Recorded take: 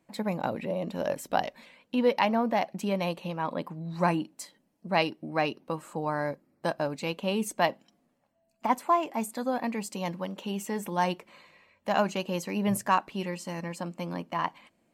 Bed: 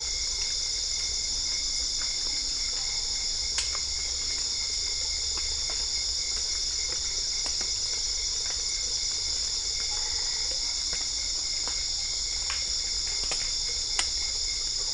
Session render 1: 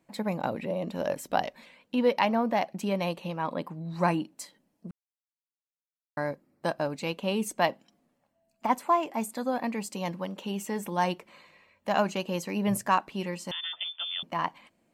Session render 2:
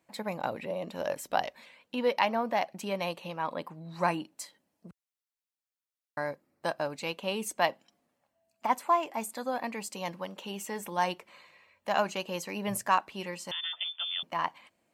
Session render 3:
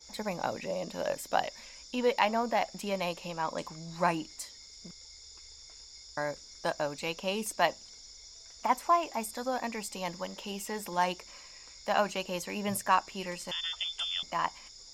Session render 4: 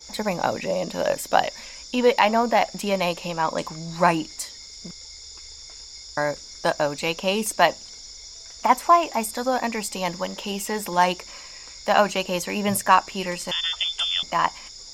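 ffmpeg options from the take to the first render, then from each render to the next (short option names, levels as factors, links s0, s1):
-filter_complex "[0:a]asettb=1/sr,asplit=3[s0][s1][s2];[s0]atrim=end=13.514[s3];[s1]atrim=start=13.51:end=14.23,asetpts=PTS-STARTPTS,afade=t=in:d=0.004:c=qsin,afade=t=out:st=0.716:d=0.004:c=qsin,lowpass=f=3100:t=q:w=0.5098,lowpass=f=3100:t=q:w=0.6013,lowpass=f=3100:t=q:w=0.9,lowpass=f=3100:t=q:w=2.563,afreqshift=-3700[s4];[s2]atrim=start=14.226[s5];[s3][s4]acrossfade=d=0.004:c1=hsin:c2=qsin[s6];[s6][s5]acrossfade=d=0.004:c1=qsin:c2=hsin,asplit=3[s7][s8][s9];[s7]atrim=end=4.91,asetpts=PTS-STARTPTS,afade=t=out:st=4.906:d=0.004:c=hsin[s10];[s8]atrim=start=4.91:end=6.17,asetpts=PTS-STARTPTS,volume=0[s11];[s9]atrim=start=6.17,asetpts=PTS-STARTPTS,afade=t=in:d=0.004:c=hsin[s12];[s10][s11][s12]concat=n=3:v=0:a=1"
-af "highpass=62,equalizer=f=200:t=o:w=2.2:g=-8"
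-filter_complex "[1:a]volume=0.0841[s0];[0:a][s0]amix=inputs=2:normalize=0"
-af "volume=2.99,alimiter=limit=0.708:level=0:latency=1"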